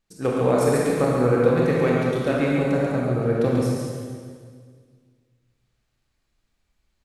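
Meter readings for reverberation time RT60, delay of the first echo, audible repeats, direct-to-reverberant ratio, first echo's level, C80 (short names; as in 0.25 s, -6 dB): 1.8 s, 0.138 s, 1, -5.0 dB, -5.0 dB, -1.0 dB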